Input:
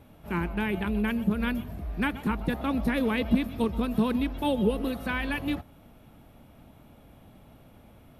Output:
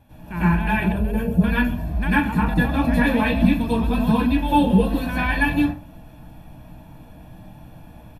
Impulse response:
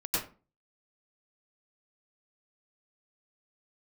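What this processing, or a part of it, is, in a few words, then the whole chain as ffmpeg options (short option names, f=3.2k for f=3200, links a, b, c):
microphone above a desk: -filter_complex "[0:a]aecho=1:1:1.2:0.59[a];[1:a]atrim=start_sample=2205[b];[a][b]afir=irnorm=-1:irlink=0,asettb=1/sr,asplit=3[c][d][e];[c]atrim=end=0.924[f];[d]atrim=start=0.92:end=1.44,asetpts=PTS-STARTPTS,afade=t=in:d=0.004:c=qsin,afade=t=out:st=0.516:d=0.004:c=qsin,equalizer=f=125:t=o:w=1:g=4,equalizer=f=250:t=o:w=1:g=-6,equalizer=f=500:t=o:w=1:g=10,equalizer=f=1k:t=o:w=1:g=-10,equalizer=f=2k:t=o:w=1:g=-11,equalizer=f=4k:t=o:w=1:g=-6[g];[e]atrim=start=1.436[h];[f][g]acrossfade=d=0.004:c1=hsin:c2=qsin[i];[i][h]acrossfade=d=0.004:c1=qsin:c2=hsin"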